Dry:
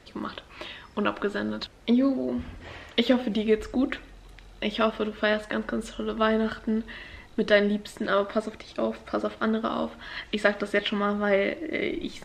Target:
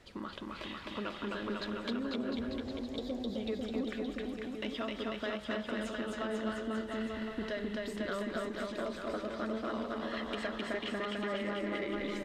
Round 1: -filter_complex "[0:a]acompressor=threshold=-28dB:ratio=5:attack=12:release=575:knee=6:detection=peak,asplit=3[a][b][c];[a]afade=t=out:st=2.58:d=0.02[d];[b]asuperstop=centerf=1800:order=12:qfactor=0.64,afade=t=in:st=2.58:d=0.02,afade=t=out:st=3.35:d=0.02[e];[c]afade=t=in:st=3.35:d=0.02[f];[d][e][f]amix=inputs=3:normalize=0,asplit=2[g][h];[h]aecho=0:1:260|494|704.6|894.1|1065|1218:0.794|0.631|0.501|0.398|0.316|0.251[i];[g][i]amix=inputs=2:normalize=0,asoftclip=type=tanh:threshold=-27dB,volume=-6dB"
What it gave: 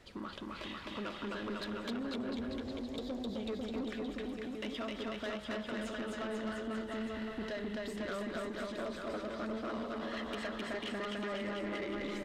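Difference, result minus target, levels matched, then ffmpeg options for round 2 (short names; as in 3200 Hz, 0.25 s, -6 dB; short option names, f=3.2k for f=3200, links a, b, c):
soft clip: distortion +10 dB
-filter_complex "[0:a]acompressor=threshold=-28dB:ratio=5:attack=12:release=575:knee=6:detection=peak,asplit=3[a][b][c];[a]afade=t=out:st=2.58:d=0.02[d];[b]asuperstop=centerf=1800:order=12:qfactor=0.64,afade=t=in:st=2.58:d=0.02,afade=t=out:st=3.35:d=0.02[e];[c]afade=t=in:st=3.35:d=0.02[f];[d][e][f]amix=inputs=3:normalize=0,asplit=2[g][h];[h]aecho=0:1:260|494|704.6|894.1|1065|1218:0.794|0.631|0.501|0.398|0.316|0.251[i];[g][i]amix=inputs=2:normalize=0,asoftclip=type=tanh:threshold=-19dB,volume=-6dB"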